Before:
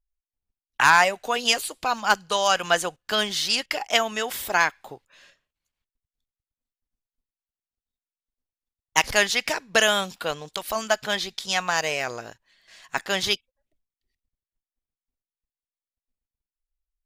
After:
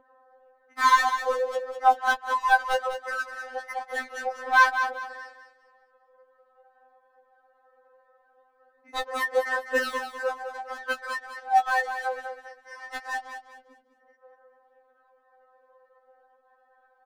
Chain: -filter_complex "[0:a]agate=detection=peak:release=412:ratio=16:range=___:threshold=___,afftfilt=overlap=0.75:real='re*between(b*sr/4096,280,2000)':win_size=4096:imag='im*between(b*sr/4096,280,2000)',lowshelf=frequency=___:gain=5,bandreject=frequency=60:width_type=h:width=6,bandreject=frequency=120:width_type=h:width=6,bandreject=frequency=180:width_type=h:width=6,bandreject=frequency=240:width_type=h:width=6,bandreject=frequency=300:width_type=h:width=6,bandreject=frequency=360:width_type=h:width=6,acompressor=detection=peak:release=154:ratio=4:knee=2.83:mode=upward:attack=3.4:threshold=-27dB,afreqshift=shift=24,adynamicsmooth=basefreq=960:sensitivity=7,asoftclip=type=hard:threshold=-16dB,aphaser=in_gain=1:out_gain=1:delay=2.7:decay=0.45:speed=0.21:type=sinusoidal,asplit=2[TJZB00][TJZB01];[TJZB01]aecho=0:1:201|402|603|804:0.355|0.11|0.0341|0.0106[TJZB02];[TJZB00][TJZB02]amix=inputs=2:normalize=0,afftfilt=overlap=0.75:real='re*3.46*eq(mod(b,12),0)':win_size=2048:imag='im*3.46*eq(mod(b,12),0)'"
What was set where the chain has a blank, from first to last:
-25dB, -52dB, 440